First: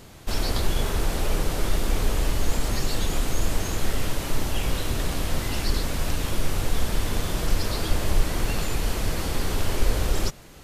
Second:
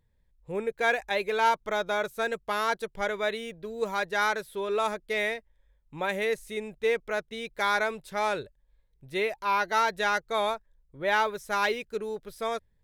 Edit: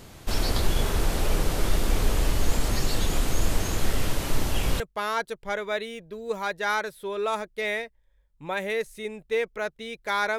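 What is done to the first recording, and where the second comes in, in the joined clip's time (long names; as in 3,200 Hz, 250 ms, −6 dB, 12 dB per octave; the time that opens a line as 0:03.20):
first
0:04.80: continue with second from 0:02.32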